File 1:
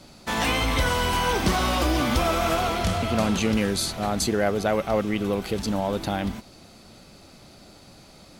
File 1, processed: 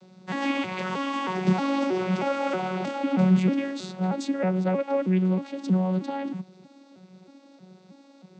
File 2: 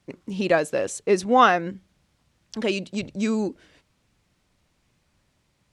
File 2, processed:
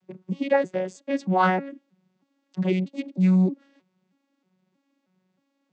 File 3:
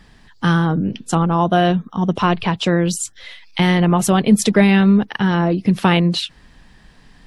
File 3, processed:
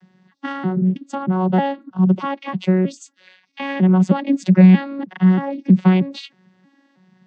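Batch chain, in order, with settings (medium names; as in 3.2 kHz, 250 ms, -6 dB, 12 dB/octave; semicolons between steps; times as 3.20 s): vocoder on a broken chord bare fifth, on F#3, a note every 316 ms; dynamic bell 2.2 kHz, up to +5 dB, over -47 dBFS, Q 2.2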